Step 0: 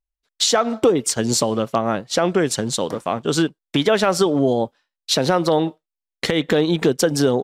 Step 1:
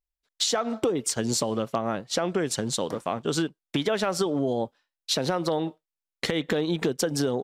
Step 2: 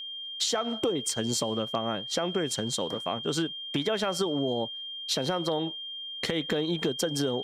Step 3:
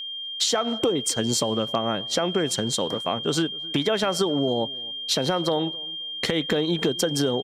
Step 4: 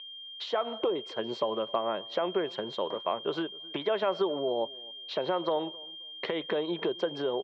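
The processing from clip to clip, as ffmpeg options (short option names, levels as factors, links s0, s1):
-af "acompressor=threshold=0.126:ratio=3,volume=0.596"
-af "aeval=exprs='val(0)+0.0224*sin(2*PI*3200*n/s)':c=same,volume=0.708"
-filter_complex "[0:a]asplit=2[s0][s1];[s1]adelay=264,lowpass=f=940:p=1,volume=0.0794,asplit=2[s2][s3];[s3]adelay=264,lowpass=f=940:p=1,volume=0.27[s4];[s0][s2][s4]amix=inputs=3:normalize=0,volume=1.78"
-af "highpass=240,equalizer=f=260:t=q:w=4:g=-7,equalizer=f=380:t=q:w=4:g=6,equalizer=f=600:t=q:w=4:g=7,equalizer=f=1000:t=q:w=4:g=9,lowpass=f=3300:w=0.5412,lowpass=f=3300:w=1.3066,volume=0.376"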